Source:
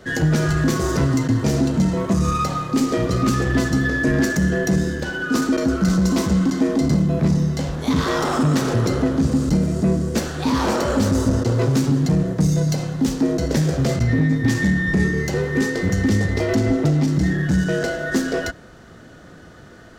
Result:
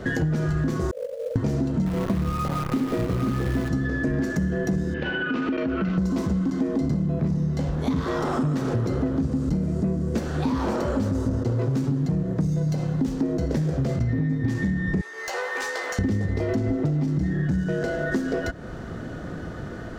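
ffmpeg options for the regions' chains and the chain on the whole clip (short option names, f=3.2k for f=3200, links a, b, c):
-filter_complex "[0:a]asettb=1/sr,asplit=3[a][b][c];[a]atrim=end=0.914[d];[b]atrim=start=0.91:end=1.36,asetpts=PTS-STARTPTS,afade=t=in:d=0.004:c=qsin,afade=t=out:st=0.446:d=0.004:c=qsin,asuperpass=centerf=530:order=20:qfactor=3.1,acrusher=bits=4:mode=log:mix=0:aa=0.000001[e];[c]atrim=start=1.356[f];[d][e]acrossfade=d=0.004:c1=hsin:c2=qsin[g];[g][f]acrossfade=d=0.004:c1=qsin:c2=hsin,asettb=1/sr,asplit=3[h][i][j];[h]atrim=end=1.864[k];[i]atrim=start=1.86:end=3.69,asetpts=PTS-STARTPTS,afade=t=in:d=0.004:c=qsin,afade=t=out:st=1.826:d=0.004:c=qsin,lowpass=3.1k,acrusher=bits=5:dc=4:mix=0:aa=0.000001[l];[j]atrim=start=3.686[m];[k][l]acrossfade=d=0.004:c1=hsin:c2=qsin[n];[n][m]acrossfade=d=0.004:c1=qsin:c2=hsin,asettb=1/sr,asplit=3[o][p][q];[o]atrim=end=4.944[r];[p]atrim=start=4.94:end=5.98,asetpts=PTS-STARTPTS,afade=t=in:d=0.004:c=qsin,afade=t=out:st=1.036:d=0.004:c=qsin,lowshelf=f=110:g=-10,acompressor=threshold=-22dB:ratio=6:attack=3.2:release=140:knee=1:detection=peak,lowpass=f=2.7k:t=q:w=3.6[s];[q]atrim=start=5.976[t];[r][s]acrossfade=d=0.004:c1=hsin:c2=qsin[u];[u][t]acrossfade=d=0.004:c1=qsin:c2=hsin,asettb=1/sr,asplit=3[v][w][x];[v]atrim=end=15.014[y];[w]atrim=start=15.01:end=15.99,asetpts=PTS-STARTPTS,afade=t=in:d=0.004:c=qsin,afade=t=out:st=0.976:d=0.004:c=qsin,highpass=f=710:w=0.5412,highpass=f=710:w=1.3066,aeval=exprs='0.0944*(abs(mod(val(0)/0.0944+3,4)-2)-1)':c=same,asplit=2[z][aa];[aa]adelay=14,volume=-6.5dB[ab];[z][ab]amix=inputs=2:normalize=0,atrim=end_sample=43218[ac];[x]atrim=start=15.986[ad];[y][ac]acrossfade=d=0.004:c1=hsin:c2=qsin[ae];[ae][ad]acrossfade=d=0.004:c1=qsin:c2=hsin,lowshelf=f=330:g=4,acompressor=threshold=-30dB:ratio=6,highshelf=f=2.4k:g=-9,volume=7.5dB"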